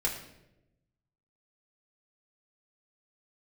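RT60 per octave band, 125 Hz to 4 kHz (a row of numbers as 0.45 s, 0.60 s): 1.5 s, 1.2 s, 1.1 s, 0.70 s, 0.75 s, 0.65 s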